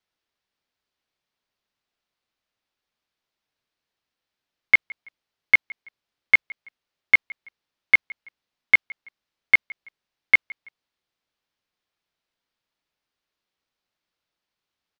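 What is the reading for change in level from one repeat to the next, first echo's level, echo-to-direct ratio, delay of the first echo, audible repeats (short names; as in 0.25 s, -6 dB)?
-9.5 dB, -23.0 dB, -22.5 dB, 0.165 s, 2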